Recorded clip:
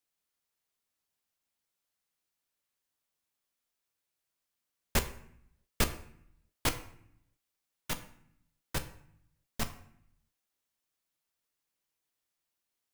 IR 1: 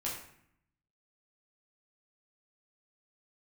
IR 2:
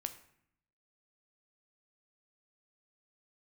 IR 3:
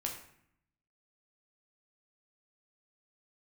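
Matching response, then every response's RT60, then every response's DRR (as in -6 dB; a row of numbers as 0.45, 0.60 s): 2; 0.65, 0.65, 0.65 s; -6.0, 7.5, 0.0 dB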